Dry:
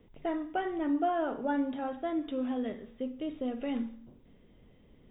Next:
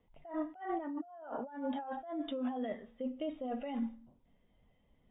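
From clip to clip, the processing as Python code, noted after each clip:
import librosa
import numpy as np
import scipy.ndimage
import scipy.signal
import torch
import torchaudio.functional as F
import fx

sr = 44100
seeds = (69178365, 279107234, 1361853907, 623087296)

y = fx.low_shelf_res(x, sr, hz=550.0, db=-8.5, q=1.5)
y = fx.over_compress(y, sr, threshold_db=-43.0, ratio=-1.0)
y = fx.spectral_expand(y, sr, expansion=1.5)
y = F.gain(torch.from_numpy(y), 2.5).numpy()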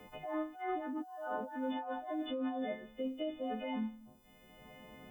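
y = fx.freq_snap(x, sr, grid_st=3)
y = fx.band_squash(y, sr, depth_pct=70)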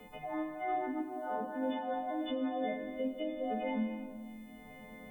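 y = fx.room_shoebox(x, sr, seeds[0], volume_m3=3400.0, walls='mixed', distance_m=1.7)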